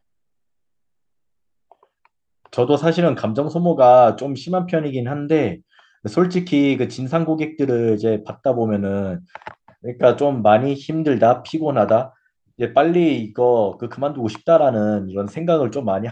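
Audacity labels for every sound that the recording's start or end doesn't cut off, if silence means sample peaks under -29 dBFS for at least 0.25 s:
2.530000	5.550000	sound
6.050000	9.510000	sound
9.840000	12.060000	sound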